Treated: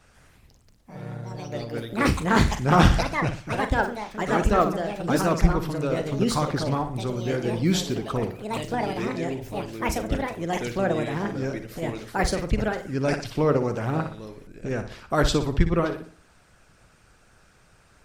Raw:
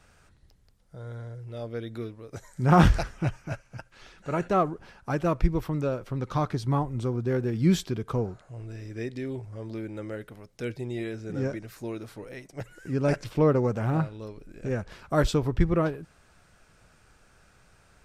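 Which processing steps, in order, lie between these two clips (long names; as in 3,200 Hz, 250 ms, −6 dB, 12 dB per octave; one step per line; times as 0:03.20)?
on a send: flutter between parallel walls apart 10.3 metres, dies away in 0.45 s
on the sum: dynamic equaliser 4,300 Hz, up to +4 dB, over −51 dBFS, Q 0.8
delay with pitch and tempo change per echo 146 ms, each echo +4 semitones, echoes 2
harmonic and percussive parts rebalanced harmonic −7 dB
level +4.5 dB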